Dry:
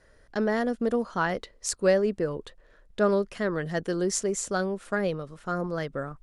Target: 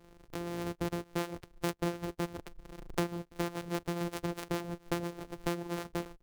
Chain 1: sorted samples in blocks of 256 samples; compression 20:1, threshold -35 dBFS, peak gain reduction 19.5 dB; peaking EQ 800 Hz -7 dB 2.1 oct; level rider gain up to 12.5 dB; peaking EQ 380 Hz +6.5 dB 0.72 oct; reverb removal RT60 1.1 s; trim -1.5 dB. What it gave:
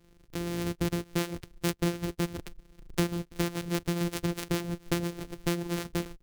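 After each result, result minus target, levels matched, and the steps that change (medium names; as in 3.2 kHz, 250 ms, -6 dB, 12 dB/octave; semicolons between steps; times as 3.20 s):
compression: peak gain reduction -8 dB; 1 kHz band -5.0 dB
change: compression 20:1, threshold -43.5 dBFS, peak gain reduction 28 dB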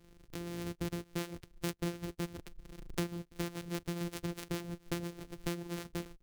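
1 kHz band -5.0 dB
change: first peaking EQ 800 Hz +2 dB 2.1 oct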